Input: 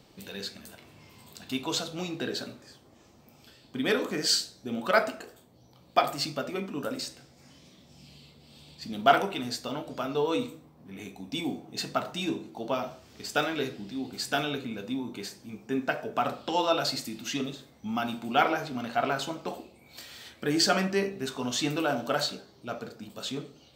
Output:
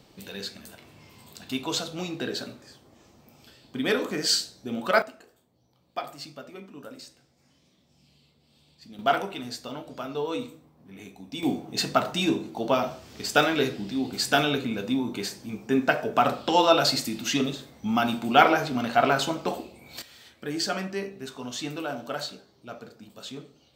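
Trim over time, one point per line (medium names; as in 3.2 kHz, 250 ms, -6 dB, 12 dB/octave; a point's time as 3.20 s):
+1.5 dB
from 5.02 s -9.5 dB
from 8.99 s -2.5 dB
from 11.43 s +6.5 dB
from 20.02 s -4.5 dB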